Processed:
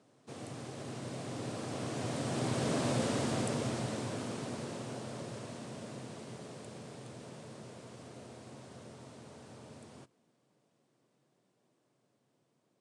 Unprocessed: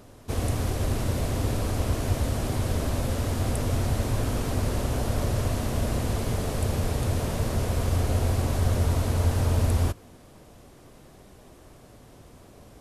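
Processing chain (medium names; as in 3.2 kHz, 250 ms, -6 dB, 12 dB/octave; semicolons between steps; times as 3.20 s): Doppler pass-by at 2.95 s, 12 m/s, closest 7.2 m; Chebyshev band-pass 130–9100 Hz, order 4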